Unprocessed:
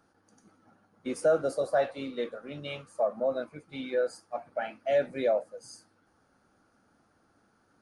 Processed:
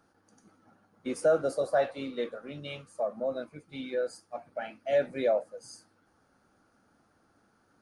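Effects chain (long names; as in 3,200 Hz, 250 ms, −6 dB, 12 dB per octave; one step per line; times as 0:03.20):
0:02.51–0:04.93: parametric band 980 Hz −4.5 dB 2.4 octaves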